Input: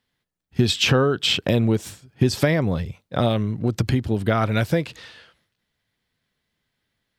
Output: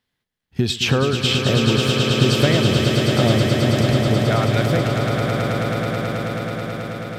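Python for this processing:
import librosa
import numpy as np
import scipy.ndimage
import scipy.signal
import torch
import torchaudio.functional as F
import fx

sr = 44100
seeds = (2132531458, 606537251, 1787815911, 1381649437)

p1 = x + fx.echo_swell(x, sr, ms=108, loudest=8, wet_db=-7.5, dry=0)
y = F.gain(torch.from_numpy(p1), -1.0).numpy()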